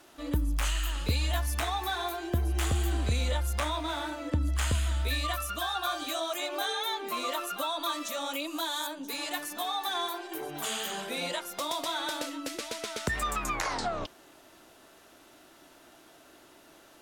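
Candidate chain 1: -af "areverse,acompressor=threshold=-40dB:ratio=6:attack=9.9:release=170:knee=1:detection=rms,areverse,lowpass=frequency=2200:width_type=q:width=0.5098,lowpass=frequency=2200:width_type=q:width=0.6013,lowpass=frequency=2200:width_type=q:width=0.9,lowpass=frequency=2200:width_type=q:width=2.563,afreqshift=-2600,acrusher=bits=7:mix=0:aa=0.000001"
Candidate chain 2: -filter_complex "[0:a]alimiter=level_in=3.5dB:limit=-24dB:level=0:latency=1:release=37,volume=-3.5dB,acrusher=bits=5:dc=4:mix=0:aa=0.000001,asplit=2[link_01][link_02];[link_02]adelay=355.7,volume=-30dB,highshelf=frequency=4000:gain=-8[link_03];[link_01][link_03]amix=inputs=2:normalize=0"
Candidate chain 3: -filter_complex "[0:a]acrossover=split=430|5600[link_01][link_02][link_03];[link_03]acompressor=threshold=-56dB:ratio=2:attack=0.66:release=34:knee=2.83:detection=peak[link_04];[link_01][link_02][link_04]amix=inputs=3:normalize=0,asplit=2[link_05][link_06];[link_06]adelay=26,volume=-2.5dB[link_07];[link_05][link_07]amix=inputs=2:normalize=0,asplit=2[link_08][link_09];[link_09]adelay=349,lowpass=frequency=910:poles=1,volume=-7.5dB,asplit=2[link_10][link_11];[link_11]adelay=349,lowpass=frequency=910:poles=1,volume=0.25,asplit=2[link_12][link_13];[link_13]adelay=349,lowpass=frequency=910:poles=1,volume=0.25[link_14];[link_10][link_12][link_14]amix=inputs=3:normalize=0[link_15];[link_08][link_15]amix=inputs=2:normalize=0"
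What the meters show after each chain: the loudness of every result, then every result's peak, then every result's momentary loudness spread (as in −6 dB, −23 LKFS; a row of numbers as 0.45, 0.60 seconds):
−40.5, −40.0, −30.0 LKFS; −30.0, −27.5, −13.5 dBFS; 5, 2, 7 LU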